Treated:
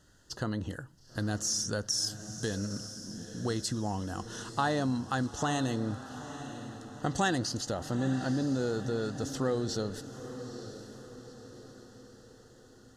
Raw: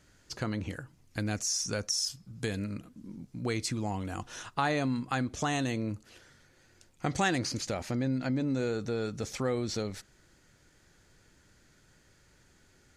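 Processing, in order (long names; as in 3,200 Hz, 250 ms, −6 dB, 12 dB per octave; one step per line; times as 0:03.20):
Butterworth band-reject 2,300 Hz, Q 2.5
on a send: feedback delay with all-pass diffusion 911 ms, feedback 49%, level −11.5 dB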